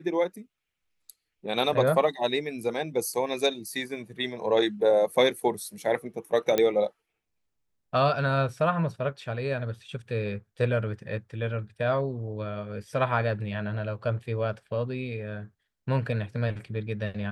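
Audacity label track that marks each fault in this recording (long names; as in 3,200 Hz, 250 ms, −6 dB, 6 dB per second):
6.580000	6.580000	click −10 dBFS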